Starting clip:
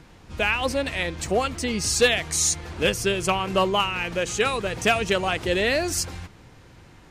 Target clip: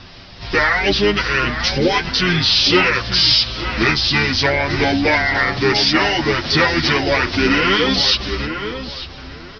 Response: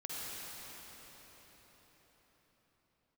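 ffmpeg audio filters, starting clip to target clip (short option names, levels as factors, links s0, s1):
-filter_complex "[0:a]aemphasis=mode=production:type=75fm,acrossover=split=5700[s0][s1];[s1]acompressor=threshold=0.0447:ratio=4:attack=1:release=60[s2];[s0][s2]amix=inputs=2:normalize=0,bass=f=250:g=0,treble=f=4000:g=5,acompressor=threshold=0.0708:ratio=1.5,volume=4.73,asoftclip=hard,volume=0.211,asplit=2[s3][s4];[s4]asetrate=33038,aresample=44100,atempo=1.33484,volume=0.447[s5];[s3][s5]amix=inputs=2:normalize=0,apsyclip=7.5,asplit=2[s6][s7];[s7]adelay=662,lowpass=f=2700:p=1,volume=0.398,asplit=2[s8][s9];[s9]adelay=662,lowpass=f=2700:p=1,volume=0.24,asplit=2[s10][s11];[s11]adelay=662,lowpass=f=2700:p=1,volume=0.24[s12];[s8][s10][s12]amix=inputs=3:normalize=0[s13];[s6][s13]amix=inputs=2:normalize=0,aresample=16000,aresample=44100,asetrate=32667,aresample=44100,asplit=2[s14][s15];[s15]adelay=8.4,afreqshift=0.41[s16];[s14][s16]amix=inputs=2:normalize=1,volume=0.501"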